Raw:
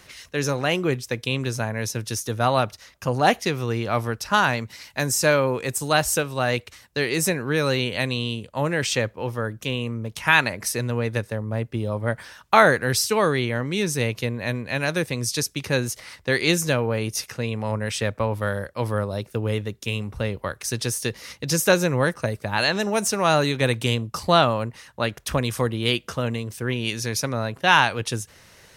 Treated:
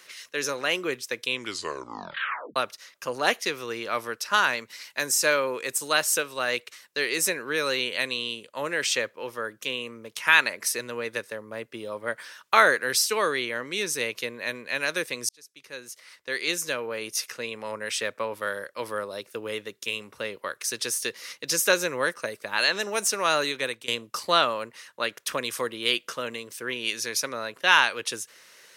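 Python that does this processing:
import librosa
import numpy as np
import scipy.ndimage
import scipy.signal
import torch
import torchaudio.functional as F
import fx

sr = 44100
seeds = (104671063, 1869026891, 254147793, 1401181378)

y = fx.edit(x, sr, fx.tape_stop(start_s=1.29, length_s=1.27),
    fx.fade_in_span(start_s=15.29, length_s=2.01),
    fx.fade_out_to(start_s=23.34, length_s=0.54, curve='qsin', floor_db=-18.0), tone=tone)
y = scipy.signal.sosfilt(scipy.signal.butter(2, 480.0, 'highpass', fs=sr, output='sos'), y)
y = fx.peak_eq(y, sr, hz=760.0, db=-9.5, octaves=0.6)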